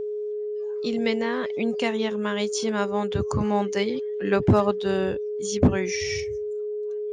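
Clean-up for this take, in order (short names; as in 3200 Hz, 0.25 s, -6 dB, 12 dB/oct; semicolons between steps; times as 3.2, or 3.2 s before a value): clip repair -10.5 dBFS; notch 420 Hz, Q 30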